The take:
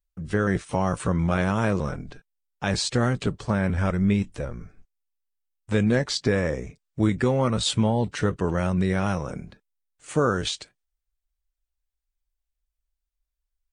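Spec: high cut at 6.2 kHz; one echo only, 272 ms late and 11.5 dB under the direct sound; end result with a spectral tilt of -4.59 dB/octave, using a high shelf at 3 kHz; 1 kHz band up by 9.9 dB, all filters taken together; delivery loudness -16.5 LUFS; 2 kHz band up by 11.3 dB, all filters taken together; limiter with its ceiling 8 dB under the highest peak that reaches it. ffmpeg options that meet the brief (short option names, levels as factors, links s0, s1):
-af "lowpass=6200,equalizer=f=1000:t=o:g=9,equalizer=f=2000:t=o:g=9,highshelf=f=3000:g=7,alimiter=limit=0.335:level=0:latency=1,aecho=1:1:272:0.266,volume=2.11"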